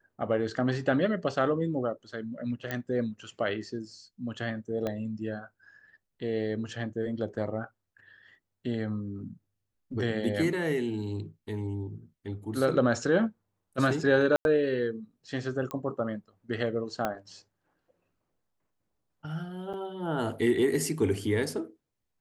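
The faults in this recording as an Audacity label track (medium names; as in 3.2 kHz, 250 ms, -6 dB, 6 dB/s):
2.710000	2.710000	pop -17 dBFS
4.870000	4.870000	pop -19 dBFS
14.360000	14.450000	dropout 91 ms
15.710000	15.710000	pop -21 dBFS
17.050000	17.050000	pop -15 dBFS
19.730000	19.740000	dropout 7.2 ms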